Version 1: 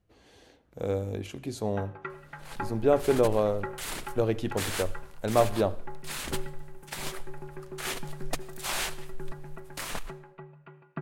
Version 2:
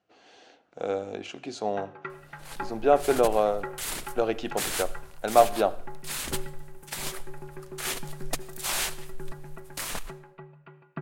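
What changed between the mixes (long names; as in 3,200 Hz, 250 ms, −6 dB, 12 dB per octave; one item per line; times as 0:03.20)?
speech: add loudspeaker in its box 250–6,500 Hz, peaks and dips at 730 Hz +9 dB, 1,400 Hz +7 dB, 2,700 Hz +5 dB
master: add high-shelf EQ 4,900 Hz +6.5 dB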